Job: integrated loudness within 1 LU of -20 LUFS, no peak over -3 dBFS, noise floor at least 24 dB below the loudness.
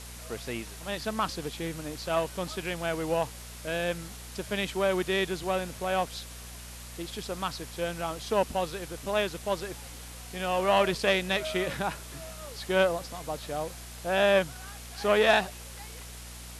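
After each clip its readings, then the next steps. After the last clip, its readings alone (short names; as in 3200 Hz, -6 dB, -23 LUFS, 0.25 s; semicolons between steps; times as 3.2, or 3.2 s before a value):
hum 60 Hz; harmonics up to 240 Hz; hum level -44 dBFS; noise floor -44 dBFS; noise floor target -54 dBFS; loudness -29.5 LUFS; peak -10.0 dBFS; loudness target -20.0 LUFS
-> de-hum 60 Hz, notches 4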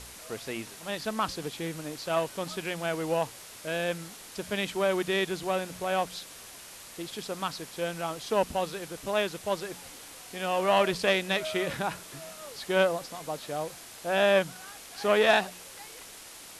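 hum none; noise floor -47 dBFS; noise floor target -54 dBFS
-> denoiser 7 dB, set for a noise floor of -47 dBFS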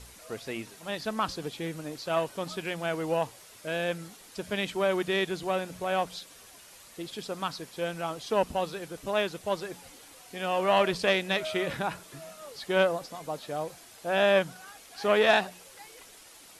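noise floor -52 dBFS; noise floor target -54 dBFS
-> denoiser 6 dB, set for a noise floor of -52 dBFS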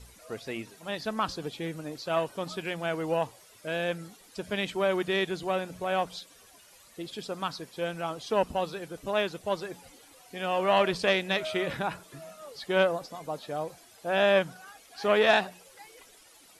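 noise floor -56 dBFS; loudness -29.5 LUFS; peak -10.0 dBFS; loudness target -20.0 LUFS
-> gain +9.5 dB; limiter -3 dBFS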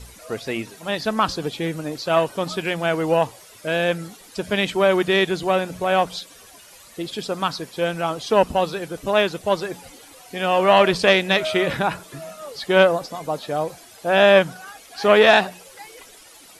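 loudness -20.5 LUFS; peak -3.0 dBFS; noise floor -47 dBFS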